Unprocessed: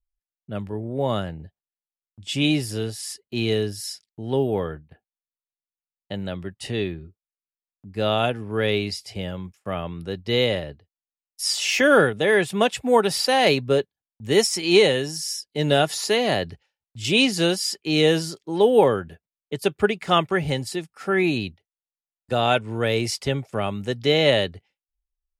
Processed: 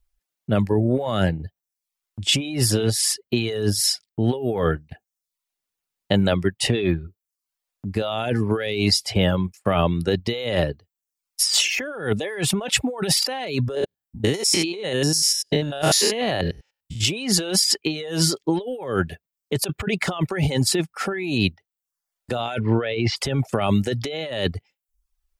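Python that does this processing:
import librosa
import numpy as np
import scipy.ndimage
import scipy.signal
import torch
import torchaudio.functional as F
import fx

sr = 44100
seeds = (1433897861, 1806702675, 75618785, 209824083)

y = fx.spec_steps(x, sr, hold_ms=100, at=(13.75, 17.03))
y = fx.lowpass(y, sr, hz=3600.0, slope=24, at=(22.59, 23.16), fade=0.02)
y = fx.over_compress(y, sr, threshold_db=-29.0, ratio=-1.0)
y = fx.dereverb_blind(y, sr, rt60_s=0.56)
y = F.gain(torch.from_numpy(y), 7.0).numpy()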